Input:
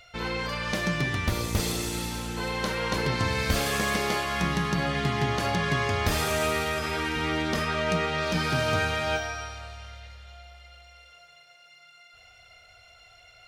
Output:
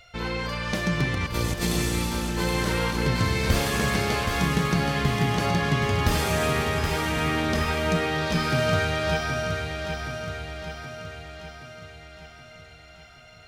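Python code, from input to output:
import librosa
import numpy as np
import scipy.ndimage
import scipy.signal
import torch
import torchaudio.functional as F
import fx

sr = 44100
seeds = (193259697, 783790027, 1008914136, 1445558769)

y = fx.low_shelf(x, sr, hz=260.0, db=4.5)
y = fx.over_compress(y, sr, threshold_db=-27.0, ratio=-0.5, at=(1.14, 3.02), fade=0.02)
y = fx.echo_feedback(y, sr, ms=773, feedback_pct=55, wet_db=-6.5)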